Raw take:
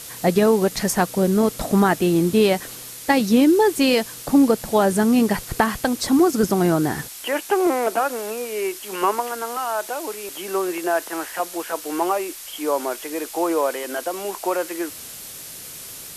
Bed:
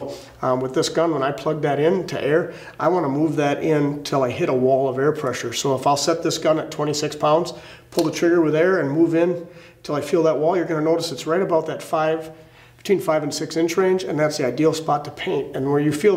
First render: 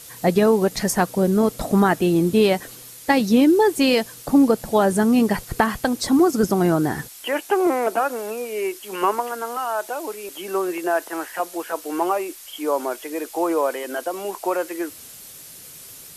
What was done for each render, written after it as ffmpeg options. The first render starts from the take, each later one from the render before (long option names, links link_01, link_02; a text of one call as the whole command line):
ffmpeg -i in.wav -af "afftdn=noise_reduction=6:noise_floor=-37" out.wav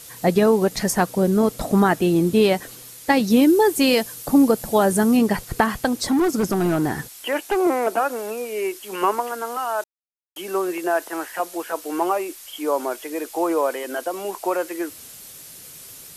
ffmpeg -i in.wav -filter_complex "[0:a]asettb=1/sr,asplit=3[link_01][link_02][link_03];[link_01]atrim=end=3.304[link_04];[link_02]atrim=start=3.3:end=5.17,asetpts=PTS-STARTPTS,afade=type=in:duration=0.004:curve=qsin,afade=type=out:start_time=1.866:duration=0.004:curve=qsin,highshelf=frequency=9300:gain=8.5[link_05];[link_03]atrim=start=5.166[link_06];[link_04][link_05]acrossfade=duration=0.004:curve1=hsin:curve2=qsin[link_07];[link_07][link_06]acrossfade=duration=0.004:curve1=qsin:curve2=hsin,asettb=1/sr,asplit=3[link_08][link_09][link_10];[link_08]atrim=end=5.874[link_11];[link_09]atrim=start=5.87:end=7.57,asetpts=PTS-STARTPTS,afade=type=in:duration=0.004:curve=qsin,afade=type=out:start_time=1.696:duration=0.004:curve=qsin,volume=15.5dB,asoftclip=hard,volume=-15.5dB[link_12];[link_10]atrim=start=7.566[link_13];[link_11][link_12]acrossfade=duration=0.004:curve1=hsin:curve2=qsin[link_14];[link_14][link_13]acrossfade=duration=0.004:curve1=qsin:curve2=hsin,asplit=3[link_15][link_16][link_17];[link_15]atrim=end=9.84,asetpts=PTS-STARTPTS,afade=type=out:start_time=9.836:duration=0.004:curve=hsin[link_18];[link_16]atrim=start=9.84:end=10.36,asetpts=PTS-STARTPTS,volume=0[link_19];[link_17]atrim=start=10.36,asetpts=PTS-STARTPTS,afade=type=in:duration=0.004:curve=hsin[link_20];[link_18][link_19][link_20]concat=n=3:v=0:a=1" out.wav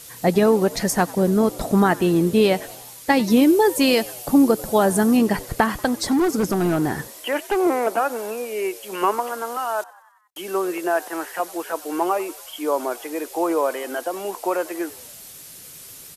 ffmpeg -i in.wav -filter_complex "[0:a]asplit=6[link_01][link_02][link_03][link_04][link_05][link_06];[link_02]adelay=93,afreqshift=80,volume=-22dB[link_07];[link_03]adelay=186,afreqshift=160,volume=-26.4dB[link_08];[link_04]adelay=279,afreqshift=240,volume=-30.9dB[link_09];[link_05]adelay=372,afreqshift=320,volume=-35.3dB[link_10];[link_06]adelay=465,afreqshift=400,volume=-39.7dB[link_11];[link_01][link_07][link_08][link_09][link_10][link_11]amix=inputs=6:normalize=0" out.wav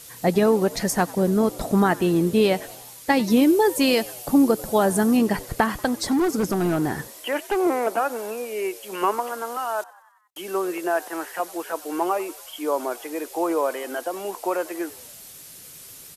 ffmpeg -i in.wav -af "volume=-2dB" out.wav